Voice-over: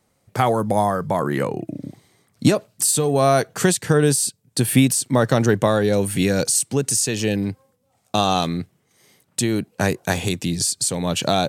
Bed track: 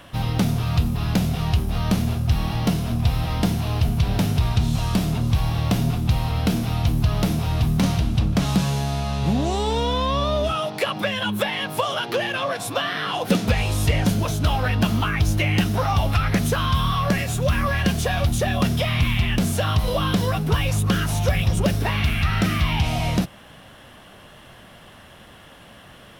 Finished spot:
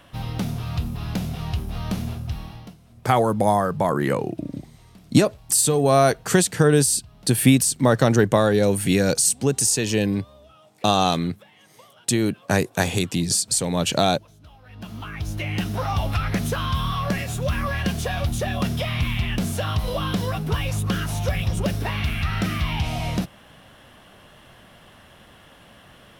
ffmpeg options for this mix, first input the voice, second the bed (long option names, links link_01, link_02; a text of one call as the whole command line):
ffmpeg -i stem1.wav -i stem2.wav -filter_complex "[0:a]adelay=2700,volume=0dB[link_01];[1:a]volume=18.5dB,afade=type=out:start_time=2.07:duration=0.69:silence=0.0794328,afade=type=in:start_time=14.65:duration=1.26:silence=0.0595662[link_02];[link_01][link_02]amix=inputs=2:normalize=0" out.wav